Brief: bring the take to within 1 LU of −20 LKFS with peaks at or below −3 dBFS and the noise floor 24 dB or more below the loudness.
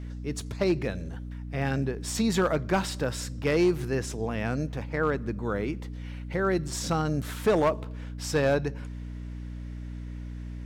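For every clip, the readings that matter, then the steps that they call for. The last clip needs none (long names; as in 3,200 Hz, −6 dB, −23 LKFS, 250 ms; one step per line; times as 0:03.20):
share of clipped samples 0.5%; peaks flattened at −17.0 dBFS; mains hum 60 Hz; hum harmonics up to 300 Hz; level of the hum −34 dBFS; integrated loudness −28.5 LKFS; sample peak −17.0 dBFS; target loudness −20.0 LKFS
→ clipped peaks rebuilt −17 dBFS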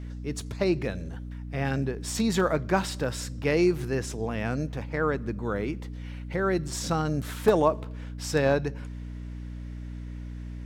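share of clipped samples 0.0%; mains hum 60 Hz; hum harmonics up to 300 Hz; level of the hum −34 dBFS
→ hum removal 60 Hz, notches 5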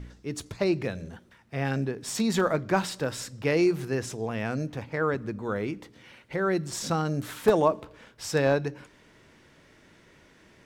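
mains hum none found; integrated loudness −28.5 LKFS; sample peak −8.0 dBFS; target loudness −20.0 LKFS
→ level +8.5 dB
brickwall limiter −3 dBFS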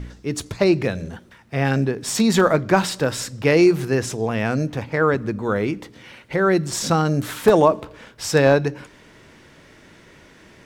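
integrated loudness −20.0 LKFS; sample peak −3.0 dBFS; background noise floor −49 dBFS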